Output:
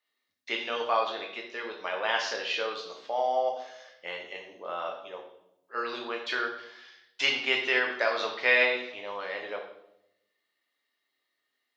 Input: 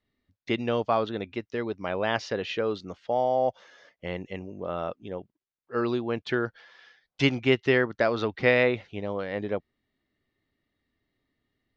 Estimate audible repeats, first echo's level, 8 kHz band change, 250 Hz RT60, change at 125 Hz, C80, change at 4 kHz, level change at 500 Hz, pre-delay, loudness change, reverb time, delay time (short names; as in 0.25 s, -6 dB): none, none, n/a, 1.1 s, under -25 dB, 9.0 dB, +4.5 dB, -5.5 dB, 3 ms, -1.5 dB, 0.80 s, none